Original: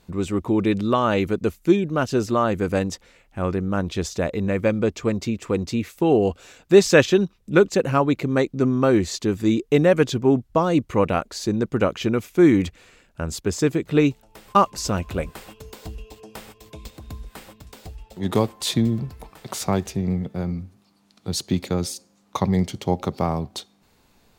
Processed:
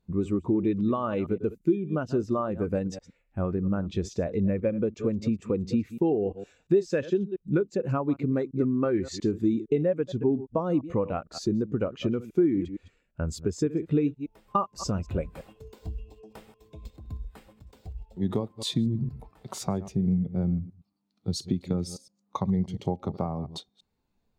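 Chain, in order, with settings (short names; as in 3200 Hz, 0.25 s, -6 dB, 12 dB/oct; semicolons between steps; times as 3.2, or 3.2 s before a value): reverse delay 0.115 s, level -13 dB; 8.59–9.27 dynamic EQ 2000 Hz, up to +7 dB, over -41 dBFS, Q 1.4; compressor 8:1, threshold -24 dBFS, peak gain reduction 16.5 dB; spectral expander 1.5:1; gain -2 dB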